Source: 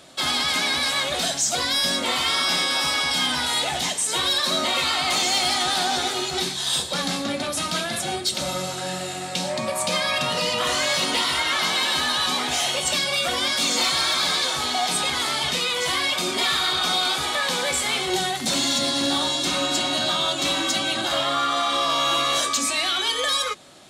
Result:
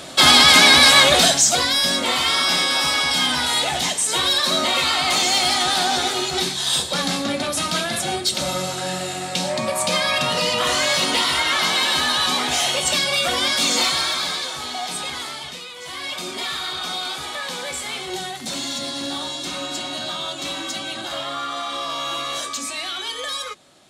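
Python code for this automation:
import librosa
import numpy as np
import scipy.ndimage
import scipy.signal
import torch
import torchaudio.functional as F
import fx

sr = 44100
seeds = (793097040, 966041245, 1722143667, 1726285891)

y = fx.gain(x, sr, db=fx.line((1.07, 12.0), (1.75, 3.0), (13.77, 3.0), (14.5, -4.5), (15.15, -4.5), (15.74, -13.0), (16.12, -5.0)))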